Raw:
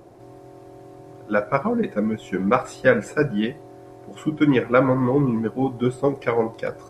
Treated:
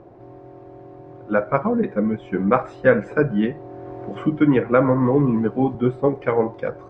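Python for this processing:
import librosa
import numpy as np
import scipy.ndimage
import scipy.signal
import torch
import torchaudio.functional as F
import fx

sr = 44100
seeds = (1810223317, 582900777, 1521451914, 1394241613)

y = scipy.signal.sosfilt(scipy.signal.bessel(2, 1700.0, 'lowpass', norm='mag', fs=sr, output='sos'), x)
y = fx.band_squash(y, sr, depth_pct=40, at=(3.11, 5.75))
y = y * librosa.db_to_amplitude(2.0)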